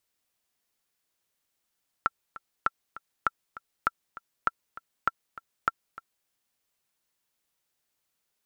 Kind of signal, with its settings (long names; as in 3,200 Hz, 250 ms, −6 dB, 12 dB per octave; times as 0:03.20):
click track 199 BPM, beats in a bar 2, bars 7, 1,350 Hz, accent 18 dB −9.5 dBFS